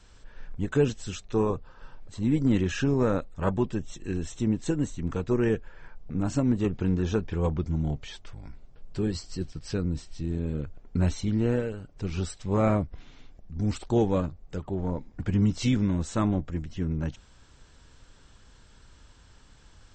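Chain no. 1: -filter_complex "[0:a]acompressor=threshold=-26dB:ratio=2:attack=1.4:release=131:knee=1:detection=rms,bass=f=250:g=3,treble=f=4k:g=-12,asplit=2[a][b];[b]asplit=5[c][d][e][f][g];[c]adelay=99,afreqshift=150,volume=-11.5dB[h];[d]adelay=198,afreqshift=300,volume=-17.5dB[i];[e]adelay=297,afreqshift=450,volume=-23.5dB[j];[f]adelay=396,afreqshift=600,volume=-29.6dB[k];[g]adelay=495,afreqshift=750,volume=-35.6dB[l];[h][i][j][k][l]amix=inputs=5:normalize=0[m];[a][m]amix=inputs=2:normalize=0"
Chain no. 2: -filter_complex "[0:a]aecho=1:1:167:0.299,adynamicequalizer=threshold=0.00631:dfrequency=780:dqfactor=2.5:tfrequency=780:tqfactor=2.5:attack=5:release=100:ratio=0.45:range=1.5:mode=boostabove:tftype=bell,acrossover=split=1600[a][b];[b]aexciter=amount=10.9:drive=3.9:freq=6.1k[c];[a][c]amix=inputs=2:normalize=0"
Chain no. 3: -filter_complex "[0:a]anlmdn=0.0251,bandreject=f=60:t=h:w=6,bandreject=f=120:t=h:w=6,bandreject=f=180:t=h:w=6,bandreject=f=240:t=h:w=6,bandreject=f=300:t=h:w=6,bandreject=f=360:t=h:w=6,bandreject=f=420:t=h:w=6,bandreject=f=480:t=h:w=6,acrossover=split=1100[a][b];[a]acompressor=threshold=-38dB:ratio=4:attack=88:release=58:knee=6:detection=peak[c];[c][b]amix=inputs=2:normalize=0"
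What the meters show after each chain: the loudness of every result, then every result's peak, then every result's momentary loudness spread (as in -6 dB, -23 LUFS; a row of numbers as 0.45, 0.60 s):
-30.5, -27.0, -35.5 LUFS; -15.5, -11.0, -17.5 dBFS; 13, 12, 8 LU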